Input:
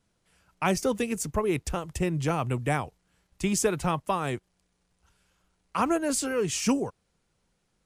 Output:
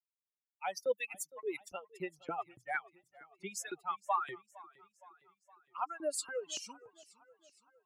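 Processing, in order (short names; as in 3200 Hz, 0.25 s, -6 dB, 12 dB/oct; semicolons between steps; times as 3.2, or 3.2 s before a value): per-bin expansion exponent 3; reverse; compressor 6:1, threshold -41 dBFS, peak gain reduction 16.5 dB; reverse; LFO high-pass saw up 3.5 Hz 310–2500 Hz; warbling echo 0.463 s, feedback 55%, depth 104 cents, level -21 dB; gain +5 dB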